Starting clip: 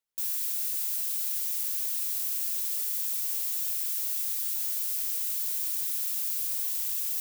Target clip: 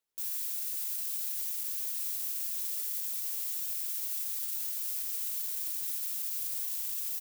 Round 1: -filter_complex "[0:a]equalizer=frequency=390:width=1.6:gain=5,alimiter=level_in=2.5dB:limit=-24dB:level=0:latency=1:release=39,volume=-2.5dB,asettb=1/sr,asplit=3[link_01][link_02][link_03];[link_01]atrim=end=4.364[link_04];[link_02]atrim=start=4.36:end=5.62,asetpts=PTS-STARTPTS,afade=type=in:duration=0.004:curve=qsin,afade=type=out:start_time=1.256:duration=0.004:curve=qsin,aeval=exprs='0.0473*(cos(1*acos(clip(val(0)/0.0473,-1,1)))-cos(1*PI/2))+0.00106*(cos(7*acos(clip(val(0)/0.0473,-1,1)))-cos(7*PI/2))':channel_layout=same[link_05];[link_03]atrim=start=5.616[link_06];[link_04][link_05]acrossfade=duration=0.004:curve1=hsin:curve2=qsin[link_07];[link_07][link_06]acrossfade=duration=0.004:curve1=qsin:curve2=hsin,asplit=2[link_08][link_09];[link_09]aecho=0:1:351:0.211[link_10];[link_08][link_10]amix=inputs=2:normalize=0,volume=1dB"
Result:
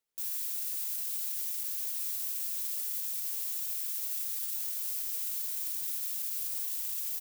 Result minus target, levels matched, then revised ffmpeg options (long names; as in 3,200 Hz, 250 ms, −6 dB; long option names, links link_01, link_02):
echo 249 ms early
-filter_complex "[0:a]equalizer=frequency=390:width=1.6:gain=5,alimiter=level_in=2.5dB:limit=-24dB:level=0:latency=1:release=39,volume=-2.5dB,asettb=1/sr,asplit=3[link_01][link_02][link_03];[link_01]atrim=end=4.364[link_04];[link_02]atrim=start=4.36:end=5.62,asetpts=PTS-STARTPTS,afade=type=in:duration=0.004:curve=qsin,afade=type=out:start_time=1.256:duration=0.004:curve=qsin,aeval=exprs='0.0473*(cos(1*acos(clip(val(0)/0.0473,-1,1)))-cos(1*PI/2))+0.00106*(cos(7*acos(clip(val(0)/0.0473,-1,1)))-cos(7*PI/2))':channel_layout=same[link_05];[link_03]atrim=start=5.616[link_06];[link_04][link_05]acrossfade=duration=0.004:curve1=hsin:curve2=qsin[link_07];[link_07][link_06]acrossfade=duration=0.004:curve1=qsin:curve2=hsin,asplit=2[link_08][link_09];[link_09]aecho=0:1:600:0.211[link_10];[link_08][link_10]amix=inputs=2:normalize=0,volume=1dB"